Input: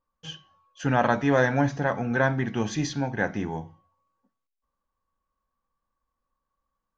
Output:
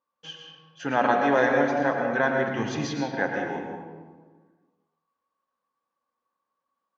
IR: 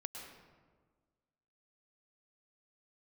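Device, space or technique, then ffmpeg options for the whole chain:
supermarket ceiling speaker: -filter_complex "[0:a]highpass=280,lowpass=5.3k[a];[1:a]atrim=start_sample=2205[b];[a][b]afir=irnorm=-1:irlink=0,asplit=3[c][d][e];[c]afade=t=out:st=2.48:d=0.02[f];[d]asubboost=boost=4:cutoff=200,afade=t=in:st=2.48:d=0.02,afade=t=out:st=3:d=0.02[g];[e]afade=t=in:st=3:d=0.02[h];[f][g][h]amix=inputs=3:normalize=0,volume=4dB"

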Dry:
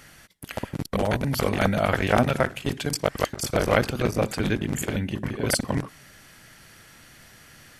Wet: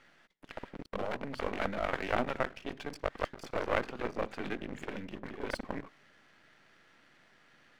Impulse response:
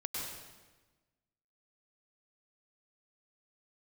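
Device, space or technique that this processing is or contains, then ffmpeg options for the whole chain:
crystal radio: -af "highpass=230,lowpass=2.8k,aeval=exprs='if(lt(val(0),0),0.251*val(0),val(0))':c=same,volume=-6.5dB"

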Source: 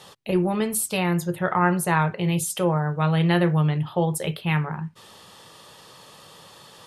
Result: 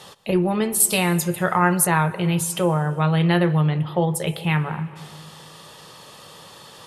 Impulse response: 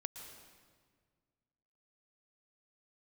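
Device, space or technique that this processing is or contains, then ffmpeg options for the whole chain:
compressed reverb return: -filter_complex "[0:a]asplit=2[a][b];[1:a]atrim=start_sample=2205[c];[b][c]afir=irnorm=-1:irlink=0,acompressor=threshold=-29dB:ratio=4,volume=-2dB[d];[a][d]amix=inputs=2:normalize=0,asettb=1/sr,asplit=3[e][f][g];[e]atrim=end=0.804[h];[f]atrim=start=0.8:end=1.87,asetpts=PTS-STARTPTS,afade=t=in:d=0.004:c=qsin,afade=t=out:st=1.066:d=0.004:c=qsin,highshelf=f=3.8k:g=10[i];[g]atrim=start=1.866[j];[h][i]acrossfade=d=0.004:c1=hsin:c2=qsin[k];[k][j]acrossfade=d=0.004:c1=qsin:c2=hsin"

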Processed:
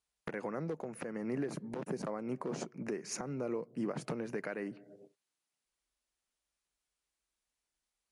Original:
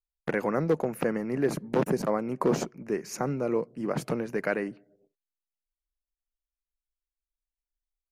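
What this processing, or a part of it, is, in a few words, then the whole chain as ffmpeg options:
podcast mastering chain: -af "highpass=89,acompressor=threshold=-44dB:ratio=3,alimiter=level_in=12.5dB:limit=-24dB:level=0:latency=1:release=386,volume=-12.5dB,volume=10dB" -ar 24000 -c:a libmp3lame -b:a 96k

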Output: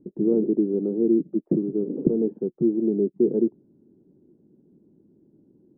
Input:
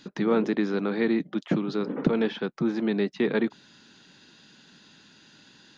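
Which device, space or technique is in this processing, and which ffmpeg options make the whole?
under water: -af "lowpass=f=470:w=0.5412,lowpass=f=470:w=1.3066,equalizer=f=360:t=o:w=0.45:g=8.5"

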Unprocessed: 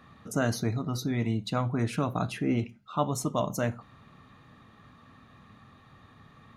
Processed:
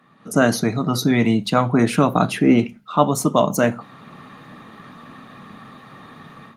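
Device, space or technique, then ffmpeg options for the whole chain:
video call: -filter_complex "[0:a]asettb=1/sr,asplit=3[a][b][c];[a]atrim=end=0.574[d];[b]atrim=start=0.57:end=1.73,asetpts=PTS-STARTPTS,afade=t=in:d=0.004:c=qsin,afade=t=out:st=1.156:d=0.004:c=qsin,equalizer=f=310:w=1:g=-3[e];[c]atrim=start=1.726[f];[d][e]acrossfade=d=0.004:c1=hsin:c2=qsin[g];[g][f]acrossfade=d=0.004:c1=qsin:c2=hsin,highpass=f=150:w=0.5412,highpass=f=150:w=1.3066,dynaudnorm=f=190:g=3:m=16dB" -ar 48000 -c:a libopus -b:a 32k

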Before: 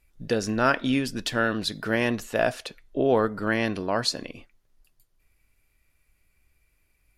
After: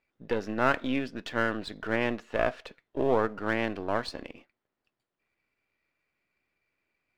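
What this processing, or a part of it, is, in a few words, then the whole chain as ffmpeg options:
crystal radio: -af "highpass=230,lowpass=2.6k,aeval=exprs='if(lt(val(0),0),0.447*val(0),val(0))':c=same,volume=-1dB"

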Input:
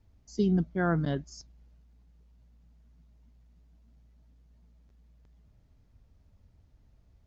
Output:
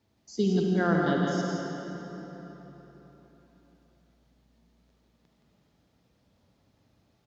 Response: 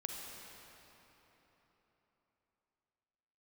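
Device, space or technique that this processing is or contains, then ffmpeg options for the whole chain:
PA in a hall: -filter_complex "[0:a]highpass=190,equalizer=f=3.9k:t=o:w=0.77:g=4,aecho=1:1:170:0.562[a];[1:a]atrim=start_sample=2205[b];[a][b]afir=irnorm=-1:irlink=0,volume=4.5dB"

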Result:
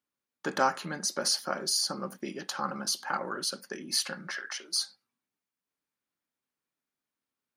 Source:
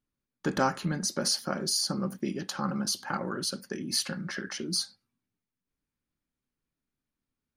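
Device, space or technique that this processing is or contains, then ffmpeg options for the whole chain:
filter by subtraction: -filter_complex "[0:a]asettb=1/sr,asplit=3[a][b][c];[a]atrim=end=4.364[d];[b]atrim=start=4.36:end=4.81,asetpts=PTS-STARTPTS,afade=t=in:d=0.004:c=qsin,afade=t=out:st=0.446:d=0.004:c=qsin,highpass=680[e];[c]atrim=start=4.806[f];[d][e]acrossfade=d=0.004:c1=hsin:c2=qsin[g];[g][f]acrossfade=d=0.004:c1=qsin:c2=hsin,asplit=2[h][i];[i]lowpass=800,volume=-1[j];[h][j]amix=inputs=2:normalize=0"

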